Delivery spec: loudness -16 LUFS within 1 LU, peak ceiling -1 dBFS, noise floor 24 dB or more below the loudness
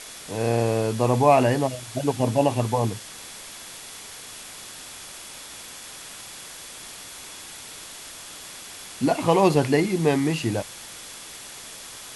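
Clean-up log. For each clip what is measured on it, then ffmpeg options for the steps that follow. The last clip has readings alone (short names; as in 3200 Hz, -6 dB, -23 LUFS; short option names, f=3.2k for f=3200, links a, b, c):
steady tone 3400 Hz; tone level -51 dBFS; noise floor -41 dBFS; noise floor target -47 dBFS; loudness -22.5 LUFS; peak -5.0 dBFS; loudness target -16.0 LUFS
-> -af "bandreject=f=3.4k:w=30"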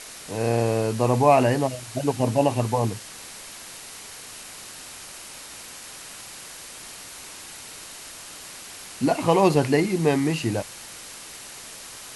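steady tone none; noise floor -41 dBFS; noise floor target -47 dBFS
-> -af "afftdn=nr=6:nf=-41"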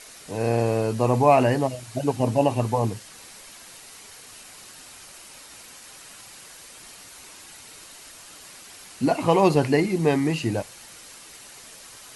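noise floor -46 dBFS; noise floor target -47 dBFS
-> -af "afftdn=nr=6:nf=-46"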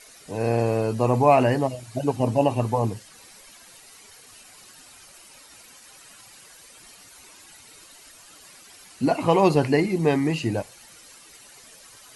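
noise floor -49 dBFS; loudness -22.5 LUFS; peak -5.0 dBFS; loudness target -16.0 LUFS
-> -af "volume=6.5dB,alimiter=limit=-1dB:level=0:latency=1"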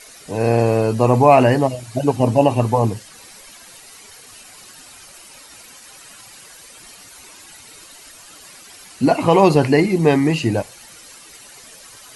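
loudness -16.5 LUFS; peak -1.0 dBFS; noise floor -43 dBFS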